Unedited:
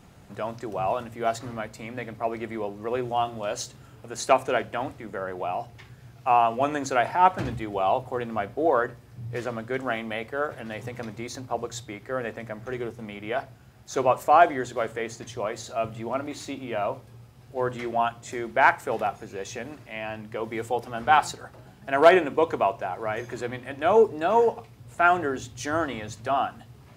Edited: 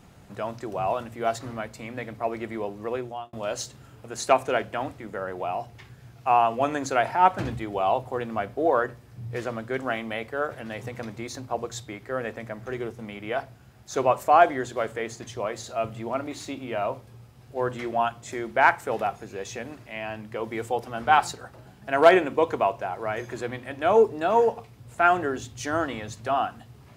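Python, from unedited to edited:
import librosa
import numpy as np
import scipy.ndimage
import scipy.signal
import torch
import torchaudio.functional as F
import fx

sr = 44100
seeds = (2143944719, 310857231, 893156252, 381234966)

y = fx.edit(x, sr, fx.fade_out_span(start_s=2.85, length_s=0.48), tone=tone)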